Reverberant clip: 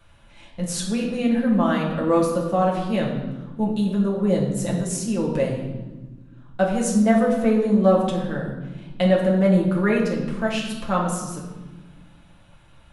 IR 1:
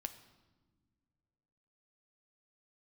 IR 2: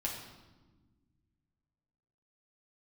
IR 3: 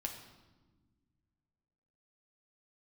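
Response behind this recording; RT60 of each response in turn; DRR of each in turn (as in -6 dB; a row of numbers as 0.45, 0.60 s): 2; not exponential, 1.3 s, 1.3 s; 8.0, -4.0, 1.5 dB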